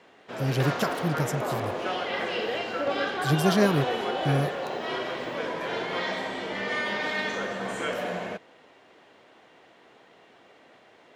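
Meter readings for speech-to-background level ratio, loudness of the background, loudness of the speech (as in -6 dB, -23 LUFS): 2.0 dB, -30.0 LUFS, -28.0 LUFS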